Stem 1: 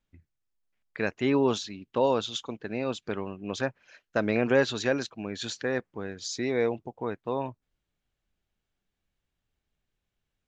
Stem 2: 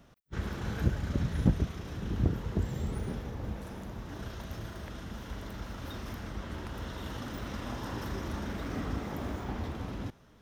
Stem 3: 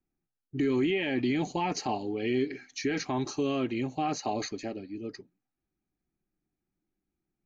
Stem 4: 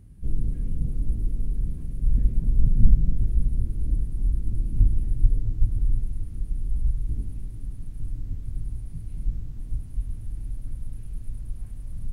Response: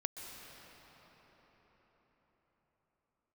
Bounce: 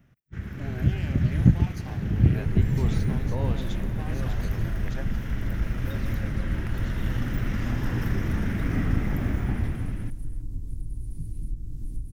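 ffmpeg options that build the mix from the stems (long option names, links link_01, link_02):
-filter_complex "[0:a]adelay=1350,volume=-14.5dB,asplit=2[link_01][link_02];[link_02]volume=-6.5dB[link_03];[1:a]equalizer=frequency=125:width_type=o:width=1:gain=7,equalizer=frequency=500:width_type=o:width=1:gain=-6,equalizer=frequency=1000:width_type=o:width=1:gain=-9,equalizer=frequency=2000:width_type=o:width=1:gain=6,equalizer=frequency=4000:width_type=o:width=1:gain=-10,equalizer=frequency=8000:width_type=o:width=1:gain=-6,dynaudnorm=framelen=190:gausssize=9:maxgain=10.5dB,volume=-2.5dB[link_04];[2:a]aeval=exprs='max(val(0),0)':channel_layout=same,volume=-12dB,asplit=3[link_05][link_06][link_07];[link_06]volume=-6dB[link_08];[3:a]bass=frequency=250:gain=9,treble=frequency=4000:gain=13,acompressor=threshold=-21dB:ratio=6,equalizer=frequency=330:width=1.5:gain=12.5,adelay=2250,volume=-6dB[link_09];[link_07]apad=whole_len=521699[link_10];[link_01][link_10]sidechaingate=range=-33dB:threshold=-57dB:ratio=16:detection=peak[link_11];[4:a]atrim=start_sample=2205[link_12];[link_03][link_08]amix=inputs=2:normalize=0[link_13];[link_13][link_12]afir=irnorm=-1:irlink=0[link_14];[link_11][link_04][link_05][link_09][link_14]amix=inputs=5:normalize=0"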